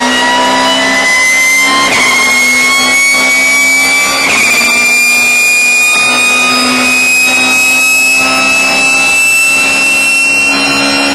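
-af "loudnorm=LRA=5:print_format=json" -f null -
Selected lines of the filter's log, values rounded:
"input_i" : "-5.5",
"input_tp" : "-1.5",
"input_lra" : "0.6",
"input_thresh" : "-15.5",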